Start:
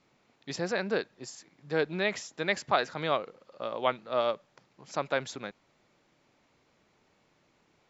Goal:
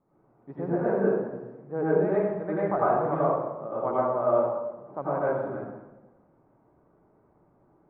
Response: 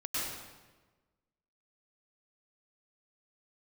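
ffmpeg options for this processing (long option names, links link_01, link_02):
-filter_complex "[0:a]lowpass=frequency=1100:width=0.5412,lowpass=frequency=1100:width=1.3066[link_01];[1:a]atrim=start_sample=2205,asetrate=52920,aresample=44100[link_02];[link_01][link_02]afir=irnorm=-1:irlink=0,volume=3.5dB"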